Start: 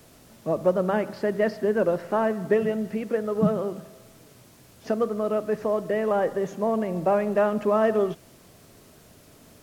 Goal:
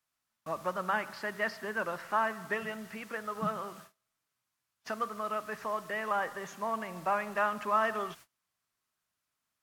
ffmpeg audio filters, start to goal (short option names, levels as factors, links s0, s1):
-af "lowshelf=f=740:t=q:w=1.5:g=-13.5,agate=range=0.0398:threshold=0.00316:ratio=16:detection=peak,volume=0.891"